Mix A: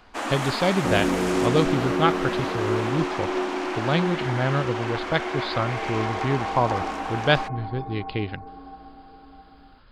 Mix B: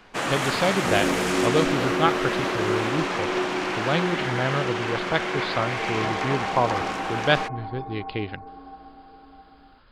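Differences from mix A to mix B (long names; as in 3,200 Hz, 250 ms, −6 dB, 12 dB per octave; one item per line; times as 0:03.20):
first sound: remove Chebyshev high-pass with heavy ripple 210 Hz, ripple 6 dB
master: add bass and treble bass −4 dB, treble −2 dB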